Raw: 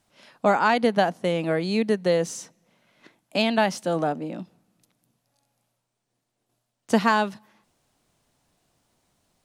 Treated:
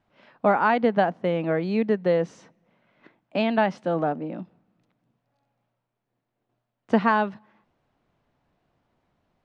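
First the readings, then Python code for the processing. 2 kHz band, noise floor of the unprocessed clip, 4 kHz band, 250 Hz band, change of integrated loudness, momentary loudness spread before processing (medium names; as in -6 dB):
-1.5 dB, -80 dBFS, -8.5 dB, 0.0 dB, -0.5 dB, 11 LU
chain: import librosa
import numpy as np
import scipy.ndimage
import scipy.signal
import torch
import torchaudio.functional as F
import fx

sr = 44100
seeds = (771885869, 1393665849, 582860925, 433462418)

y = scipy.signal.sosfilt(scipy.signal.butter(2, 2200.0, 'lowpass', fs=sr, output='sos'), x)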